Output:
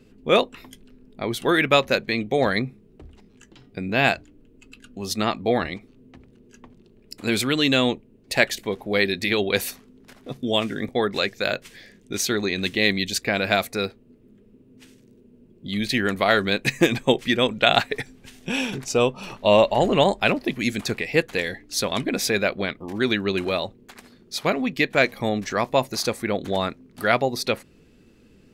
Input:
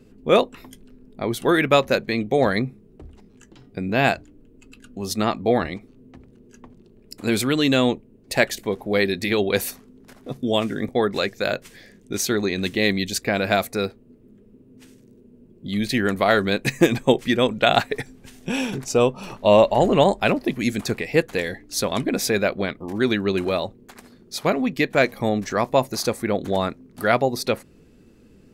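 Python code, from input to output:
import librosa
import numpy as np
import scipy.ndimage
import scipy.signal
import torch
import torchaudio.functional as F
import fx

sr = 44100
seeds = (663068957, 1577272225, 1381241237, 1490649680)

y = fx.peak_eq(x, sr, hz=3000.0, db=5.5, octaves=1.9)
y = y * 10.0 ** (-2.5 / 20.0)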